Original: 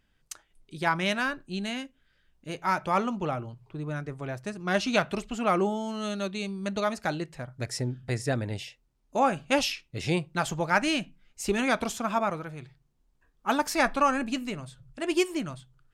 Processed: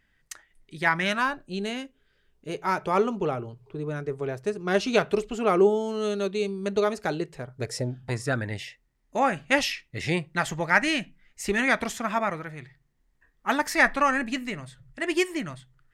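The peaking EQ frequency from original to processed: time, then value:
peaking EQ +13.5 dB 0.34 oct
0.99 s 1.9 kHz
1.60 s 420 Hz
7.65 s 420 Hz
8.49 s 1.9 kHz

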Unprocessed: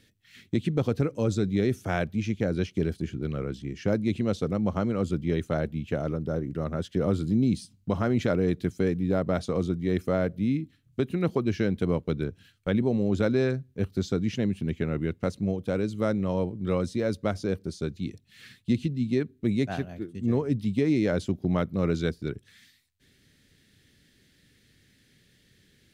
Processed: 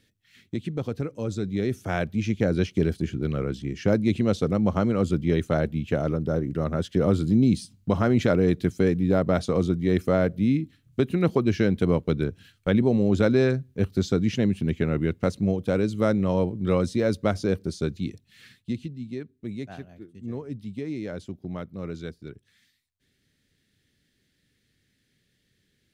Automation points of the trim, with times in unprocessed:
1.23 s -4 dB
2.44 s +4 dB
17.93 s +4 dB
19.04 s -8.5 dB

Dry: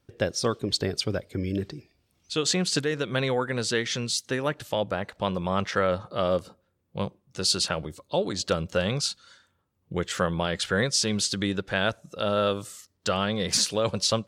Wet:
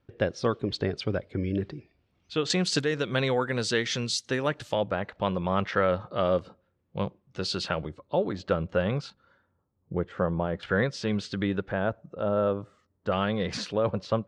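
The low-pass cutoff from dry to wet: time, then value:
2.8 kHz
from 2.50 s 6.6 kHz
from 4.74 s 3.1 kHz
from 7.89 s 1.9 kHz
from 9.10 s 1 kHz
from 10.63 s 2.2 kHz
from 11.72 s 1.1 kHz
from 13.12 s 2.5 kHz
from 13.72 s 1.5 kHz

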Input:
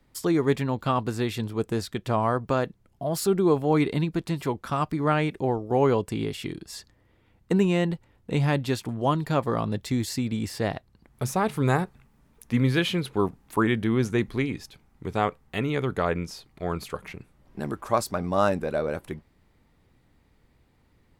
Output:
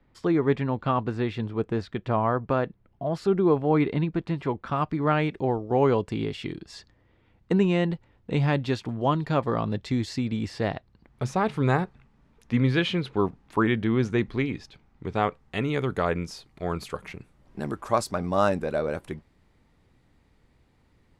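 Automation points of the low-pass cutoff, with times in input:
4.52 s 2.7 kHz
5.33 s 4.7 kHz
15.16 s 4.7 kHz
15.76 s 10 kHz

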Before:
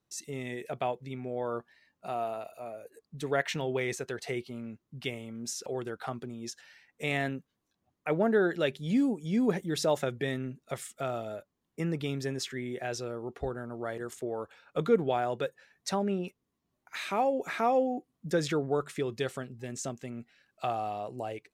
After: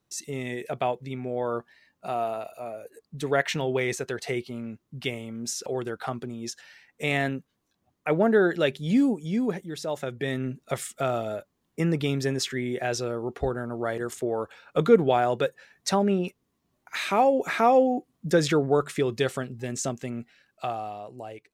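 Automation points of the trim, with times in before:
9.13 s +5 dB
9.81 s -5 dB
10.50 s +7 dB
20.15 s +7 dB
21.03 s -2.5 dB

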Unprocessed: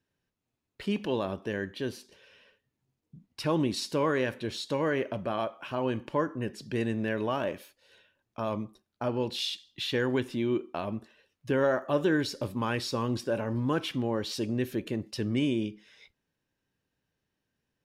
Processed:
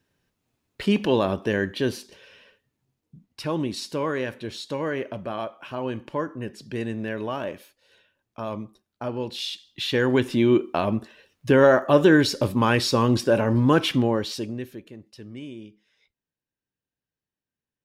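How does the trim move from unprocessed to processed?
1.92 s +9 dB
3.46 s +0.5 dB
9.35 s +0.5 dB
10.41 s +10 dB
13.98 s +10 dB
14.43 s +1 dB
14.90 s -10.5 dB

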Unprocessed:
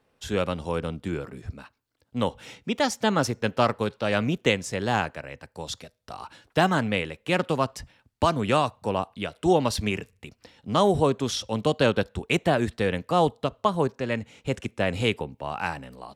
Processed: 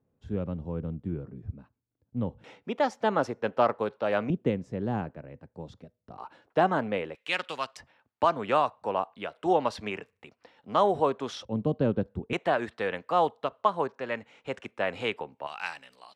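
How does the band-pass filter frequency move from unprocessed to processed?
band-pass filter, Q 0.74
130 Hz
from 2.44 s 690 Hz
from 4.30 s 200 Hz
from 6.18 s 600 Hz
from 7.15 s 2.8 kHz
from 7.77 s 930 Hz
from 11.45 s 190 Hz
from 12.33 s 1.1 kHz
from 15.47 s 3.4 kHz

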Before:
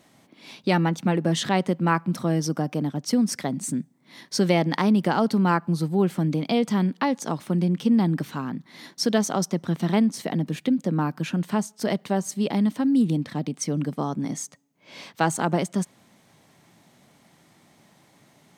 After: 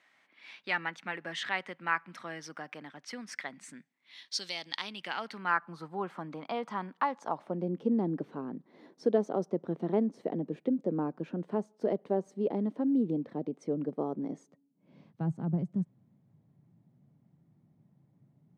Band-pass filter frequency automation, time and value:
band-pass filter, Q 2
3.78 s 1.9 kHz
4.53 s 4.7 kHz
5.88 s 1.1 kHz
7.13 s 1.1 kHz
7.74 s 440 Hz
14.32 s 440 Hz
15.12 s 130 Hz

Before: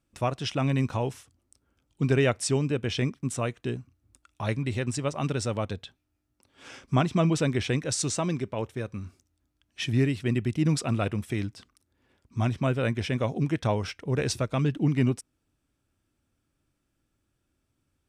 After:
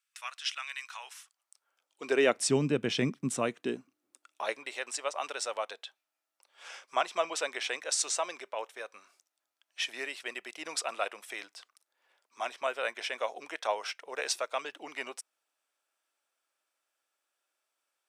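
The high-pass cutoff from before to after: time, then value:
high-pass 24 dB/octave
0.87 s 1.4 kHz
2.02 s 480 Hz
2.51 s 160 Hz
3.30 s 160 Hz
4.75 s 590 Hz

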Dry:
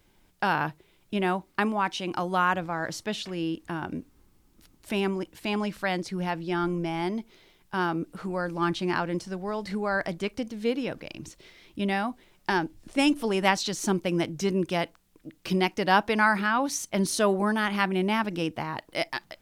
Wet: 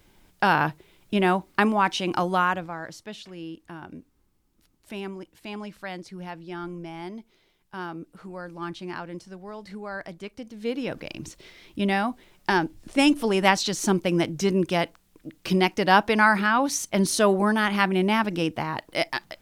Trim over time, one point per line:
2.22 s +5 dB
2.96 s -7.5 dB
10.38 s -7.5 dB
10.99 s +3.5 dB

